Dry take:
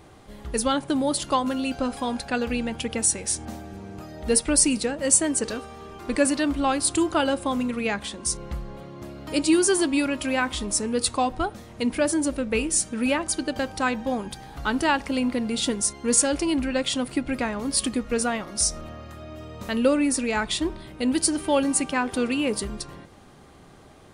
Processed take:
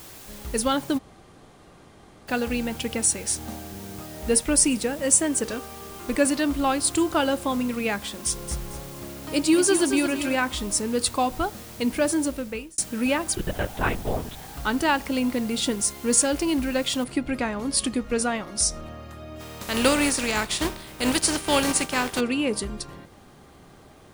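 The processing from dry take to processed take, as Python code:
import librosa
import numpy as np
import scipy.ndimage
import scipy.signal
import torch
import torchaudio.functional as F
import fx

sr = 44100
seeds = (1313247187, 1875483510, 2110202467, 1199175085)

y = fx.peak_eq(x, sr, hz=4300.0, db=-6.5, octaves=0.23, at=(3.75, 6.19))
y = fx.echo_crushed(y, sr, ms=224, feedback_pct=35, bits=7, wet_db=-8.0, at=(7.97, 10.35))
y = fx.lpc_vocoder(y, sr, seeds[0], excitation='whisper', order=10, at=(13.35, 14.48))
y = fx.noise_floor_step(y, sr, seeds[1], at_s=17.04, before_db=-45, after_db=-69, tilt_db=0.0)
y = fx.spec_flatten(y, sr, power=0.56, at=(19.39, 22.19), fade=0.02)
y = fx.edit(y, sr, fx.room_tone_fill(start_s=0.98, length_s=1.3, crossfade_s=0.02),
    fx.fade_out_span(start_s=12.2, length_s=0.58), tone=tone)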